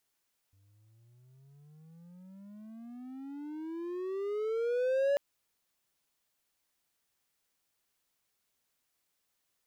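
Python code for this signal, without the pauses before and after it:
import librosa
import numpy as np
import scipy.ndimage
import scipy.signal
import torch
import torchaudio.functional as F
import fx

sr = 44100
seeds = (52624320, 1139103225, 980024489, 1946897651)

y = fx.riser_tone(sr, length_s=4.64, level_db=-22.5, wave='triangle', hz=95.7, rise_st=31.0, swell_db=39)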